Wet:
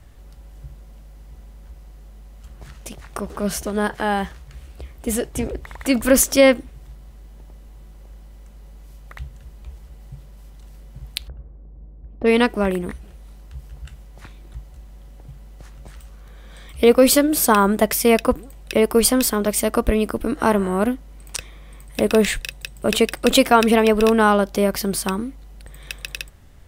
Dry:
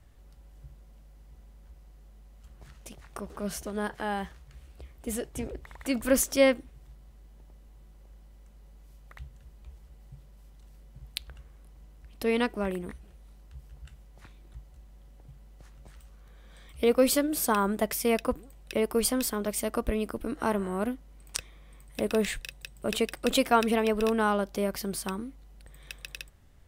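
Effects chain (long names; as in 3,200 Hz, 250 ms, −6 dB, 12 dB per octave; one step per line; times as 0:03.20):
0:11.28–0:12.39: low-pass that shuts in the quiet parts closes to 420 Hz, open at −23.5 dBFS
boost into a limiter +11.5 dB
level −1 dB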